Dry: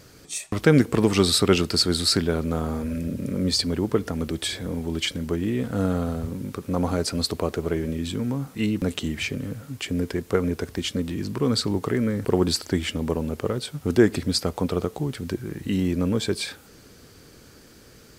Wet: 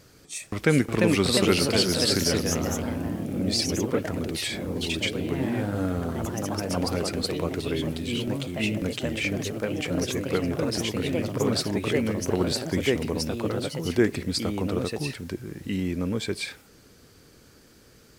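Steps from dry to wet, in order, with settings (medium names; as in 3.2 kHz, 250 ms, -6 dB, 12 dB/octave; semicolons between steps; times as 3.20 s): dynamic bell 2.2 kHz, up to +7 dB, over -48 dBFS, Q 2.9; ever faster or slower copies 419 ms, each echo +2 st, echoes 3; trim -4.5 dB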